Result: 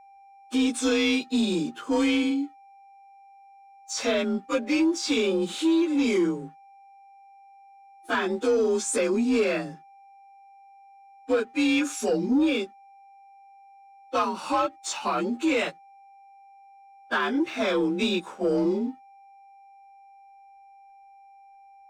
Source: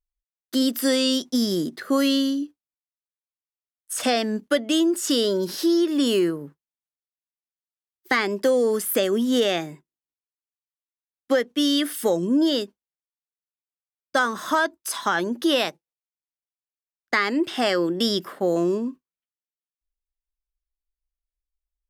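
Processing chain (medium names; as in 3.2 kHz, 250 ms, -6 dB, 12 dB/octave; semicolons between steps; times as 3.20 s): frequency axis rescaled in octaves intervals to 89%; whistle 790 Hz -46 dBFS; waveshaping leveller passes 1; trim -4 dB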